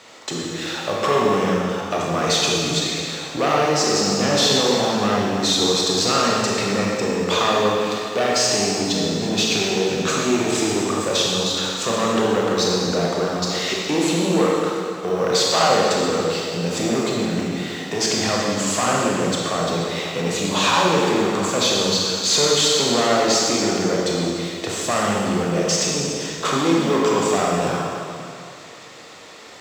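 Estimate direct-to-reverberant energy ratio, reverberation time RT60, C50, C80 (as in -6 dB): -4.0 dB, 2.5 s, -1.5 dB, 0.0 dB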